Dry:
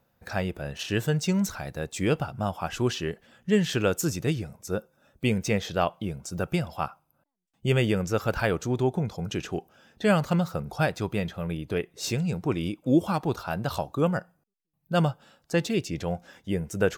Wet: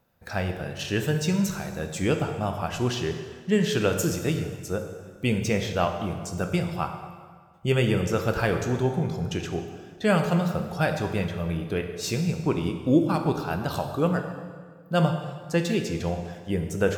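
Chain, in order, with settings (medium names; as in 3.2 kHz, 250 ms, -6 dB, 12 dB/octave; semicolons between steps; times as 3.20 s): 12.16–13.36 s: transient shaper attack +3 dB, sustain -12 dB; plate-style reverb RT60 1.7 s, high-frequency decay 0.8×, DRR 4.5 dB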